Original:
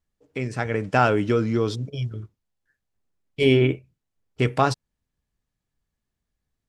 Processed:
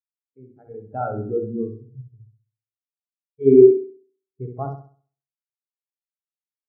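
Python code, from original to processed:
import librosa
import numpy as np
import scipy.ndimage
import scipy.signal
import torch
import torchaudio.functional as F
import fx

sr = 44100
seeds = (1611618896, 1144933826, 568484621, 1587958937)

y = fx.peak_eq(x, sr, hz=2800.0, db=-8.5, octaves=1.6)
y = fx.hum_notches(y, sr, base_hz=60, count=7)
y = fx.room_flutter(y, sr, wall_m=11.2, rt60_s=1.1)
y = fx.spectral_expand(y, sr, expansion=2.5)
y = F.gain(torch.from_numpy(y), 2.5).numpy()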